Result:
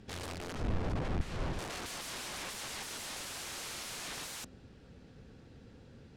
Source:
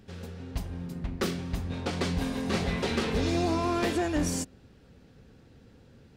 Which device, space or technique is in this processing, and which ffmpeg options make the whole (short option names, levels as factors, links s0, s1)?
overflowing digital effects unit: -filter_complex "[0:a]aeval=exprs='(mod(63.1*val(0)+1,2)-1)/63.1':c=same,lowpass=9600,asettb=1/sr,asplit=3[s0][s1][s2];[s0]atrim=end=0.554[s3];[s1]atrim=start=0.55:end=1.59,asetpts=PTS-STARTPTS,afade=t=in:d=0.004:c=qsin,afade=t=out:st=1.036:d=0.004:c=qsin,aemphasis=mode=reproduction:type=riaa[s4];[s2]atrim=start=1.586[s5];[s3][s4]acrossfade=d=0.004:c1=hsin:c2=qsin[s6];[s6][s5]acrossfade=d=0.004:c1=qsin:c2=hsin"